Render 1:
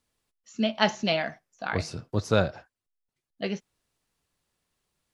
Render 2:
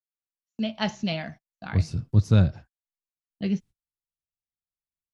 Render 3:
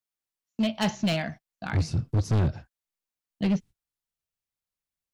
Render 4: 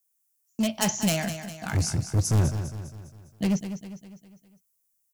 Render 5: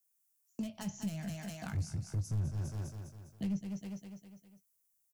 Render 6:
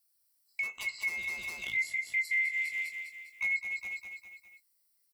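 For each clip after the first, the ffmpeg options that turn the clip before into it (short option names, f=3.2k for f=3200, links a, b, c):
-af "asubboost=boost=11.5:cutoff=190,agate=range=-35dB:threshold=-39dB:ratio=16:detection=peak,equalizer=f=1.4k:w=1.5:g=-3,volume=-4dB"
-af "volume=23.5dB,asoftclip=hard,volume=-23.5dB,volume=3.5dB"
-filter_complex "[0:a]aexciter=amount=6.4:drive=5.4:freq=5.7k,asplit=2[a][b];[b]aecho=0:1:202|404|606|808|1010:0.316|0.155|0.0759|0.0372|0.0182[c];[a][c]amix=inputs=2:normalize=0"
-filter_complex "[0:a]acrossover=split=210[a][b];[b]acompressor=threshold=-39dB:ratio=5[c];[a][c]amix=inputs=2:normalize=0,alimiter=level_in=1.5dB:limit=-24dB:level=0:latency=1:release=323,volume=-1.5dB,asplit=2[d][e];[e]adelay=20,volume=-11.5dB[f];[d][f]amix=inputs=2:normalize=0,volume=-4dB"
-af "afftfilt=real='real(if(lt(b,920),b+92*(1-2*mod(floor(b/92),2)),b),0)':imag='imag(if(lt(b,920),b+92*(1-2*mod(floor(b/92),2)),b),0)':win_size=2048:overlap=0.75,volume=3.5dB"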